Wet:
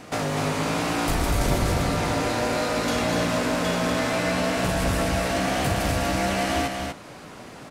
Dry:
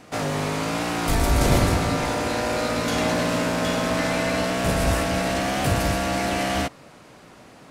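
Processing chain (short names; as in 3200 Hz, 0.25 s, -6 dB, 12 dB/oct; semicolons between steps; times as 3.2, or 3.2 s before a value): compressor 2:1, threshold -32 dBFS, peak gain reduction 10.5 dB; on a send: echo 0.245 s -4.5 dB; on the sum: gain +4.5 dB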